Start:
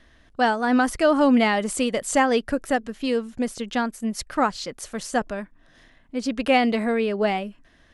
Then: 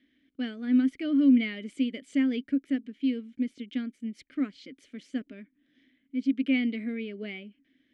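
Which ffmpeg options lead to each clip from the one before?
-filter_complex "[0:a]asplit=3[a][b][c];[a]bandpass=f=270:t=q:w=8,volume=0dB[d];[b]bandpass=f=2.29k:t=q:w=8,volume=-6dB[e];[c]bandpass=f=3.01k:t=q:w=8,volume=-9dB[f];[d][e][f]amix=inputs=3:normalize=0,equalizer=f=540:w=0.64:g=4"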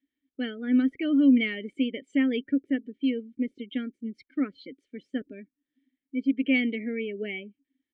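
-af "afftdn=nr=23:nf=-47,aecho=1:1:2.2:0.37,volume=4dB"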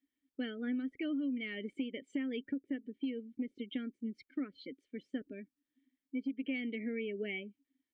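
-af "acompressor=threshold=-30dB:ratio=10,volume=-3.5dB"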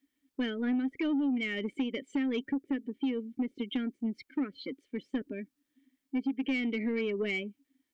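-af "asoftclip=type=tanh:threshold=-31.5dB,volume=8dB"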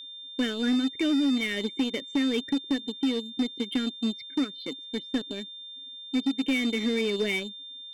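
-filter_complex "[0:a]aeval=exprs='val(0)+0.01*sin(2*PI*3600*n/s)':c=same,asplit=2[a][b];[b]acrusher=bits=4:mix=0:aa=0.5,volume=-4dB[c];[a][c]amix=inputs=2:normalize=0"

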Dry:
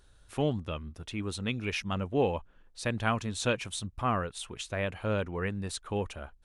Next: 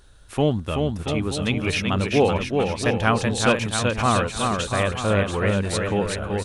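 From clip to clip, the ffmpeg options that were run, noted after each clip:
-af "aecho=1:1:380|684|927.2|1122|1277:0.631|0.398|0.251|0.158|0.1,volume=8.5dB"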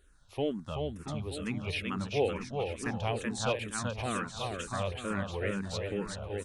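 -filter_complex "[0:a]asplit=2[a][b];[b]afreqshift=-2.2[c];[a][c]amix=inputs=2:normalize=1,volume=-9dB"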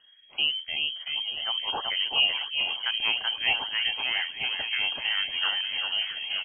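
-filter_complex "[0:a]asplit=2[a][b];[b]adelay=1574,volume=-7dB,highshelf=f=4k:g=-35.4[c];[a][c]amix=inputs=2:normalize=0,lowpass=f=2.8k:t=q:w=0.5098,lowpass=f=2.8k:t=q:w=0.6013,lowpass=f=2.8k:t=q:w=0.9,lowpass=f=2.8k:t=q:w=2.563,afreqshift=-3300,volume=5dB"

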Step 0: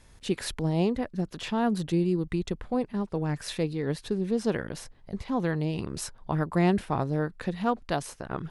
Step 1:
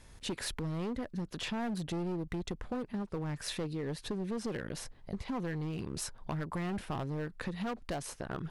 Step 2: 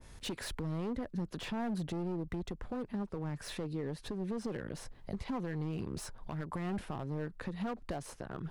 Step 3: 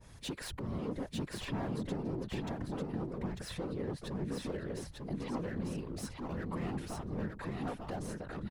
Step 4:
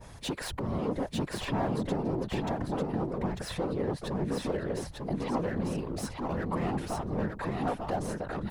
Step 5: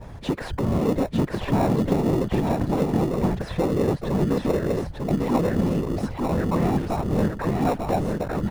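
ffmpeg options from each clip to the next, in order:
-af "volume=26dB,asoftclip=hard,volume=-26dB,acompressor=threshold=-34dB:ratio=6"
-filter_complex "[0:a]acrossover=split=110|2000[a][b][c];[c]asoftclip=type=tanh:threshold=-37.5dB[d];[a][b][d]amix=inputs=3:normalize=0,alimiter=level_in=6dB:limit=-24dB:level=0:latency=1:release=232,volume=-6dB,adynamicequalizer=threshold=0.00141:dfrequency=1500:dqfactor=0.7:tfrequency=1500:tqfactor=0.7:attack=5:release=100:ratio=0.375:range=2.5:mode=cutabove:tftype=highshelf,volume=2dB"
-filter_complex "[0:a]afftfilt=real='hypot(re,im)*cos(2*PI*random(0))':imag='hypot(re,im)*sin(2*PI*random(1))':win_size=512:overlap=0.75,asplit=2[a][b];[b]aecho=0:1:897:0.668[c];[a][c]amix=inputs=2:normalize=0,volume=4.5dB"
-af "equalizer=f=750:t=o:w=1.4:g=6,areverse,acompressor=mode=upward:threshold=-43dB:ratio=2.5,areverse,volume=5dB"
-filter_complex "[0:a]lowpass=f=1.3k:p=1,asplit=2[a][b];[b]acrusher=samples=28:mix=1:aa=0.000001,volume=-11dB[c];[a][c]amix=inputs=2:normalize=0,volume=8dB"

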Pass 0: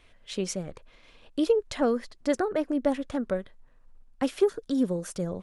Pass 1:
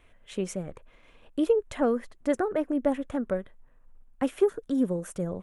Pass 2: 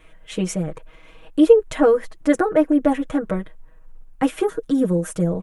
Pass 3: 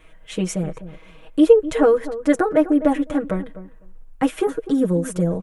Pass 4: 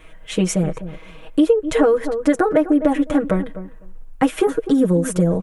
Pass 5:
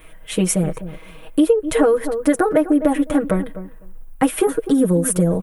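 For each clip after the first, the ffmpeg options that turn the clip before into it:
-af "equalizer=f=4.7k:t=o:w=0.86:g=-13.5"
-af "aecho=1:1:6.3:0.97,volume=6.5dB"
-filter_complex "[0:a]asplit=2[a][b];[b]adelay=252,lowpass=f=880:p=1,volume=-13dB,asplit=2[c][d];[d]adelay=252,lowpass=f=880:p=1,volume=0.16[e];[a][c][e]amix=inputs=3:normalize=0"
-af "acompressor=threshold=-17dB:ratio=6,volume=5.5dB"
-af "aexciter=amount=4.2:drive=5.6:freq=9k"

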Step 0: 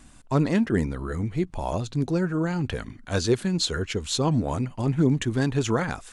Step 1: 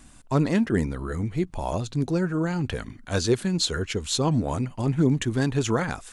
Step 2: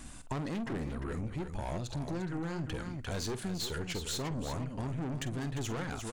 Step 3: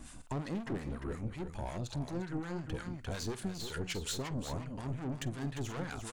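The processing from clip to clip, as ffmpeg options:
-af "highshelf=f=8.7k:g=4.5"
-af "aeval=exprs='(tanh(22.4*val(0)+0.35)-tanh(0.35))/22.4':c=same,aecho=1:1:48|349:0.211|0.355,acompressor=threshold=-40dB:ratio=3,volume=3.5dB"
-filter_complex "[0:a]acrossover=split=940[a][b];[a]aeval=exprs='val(0)*(1-0.7/2+0.7/2*cos(2*PI*5.5*n/s))':c=same[c];[b]aeval=exprs='val(0)*(1-0.7/2-0.7/2*cos(2*PI*5.5*n/s))':c=same[d];[c][d]amix=inputs=2:normalize=0,volume=1dB"

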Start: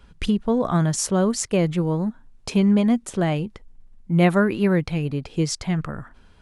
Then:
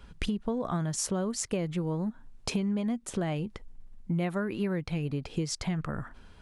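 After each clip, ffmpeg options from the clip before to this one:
-af "acompressor=threshold=-28dB:ratio=6"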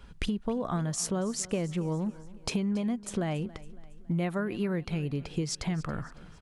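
-af "aecho=1:1:278|556|834|1112:0.106|0.0519|0.0254|0.0125"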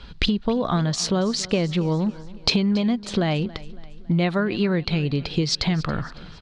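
-af "lowpass=f=4.2k:t=q:w=3.7,volume=8.5dB"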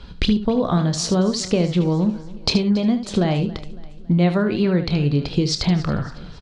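-filter_complex "[0:a]equalizer=f=2.3k:w=0.47:g=-6,asplit=2[a][b];[b]aecho=0:1:28|75:0.266|0.299[c];[a][c]amix=inputs=2:normalize=0,volume=3.5dB"

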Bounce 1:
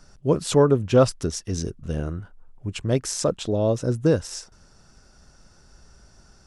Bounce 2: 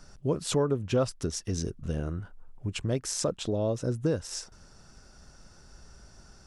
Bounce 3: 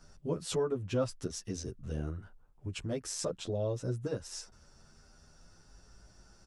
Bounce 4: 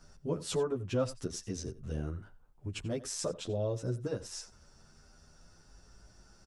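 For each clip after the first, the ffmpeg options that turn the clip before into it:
-af "acompressor=threshold=-30dB:ratio=2"
-filter_complex "[0:a]asplit=2[a][b];[b]adelay=9.9,afreqshift=0.39[c];[a][c]amix=inputs=2:normalize=1,volume=-3dB"
-filter_complex "[0:a]asplit=2[a][b];[b]adelay=87.46,volume=-17dB,highshelf=f=4k:g=-1.97[c];[a][c]amix=inputs=2:normalize=0"

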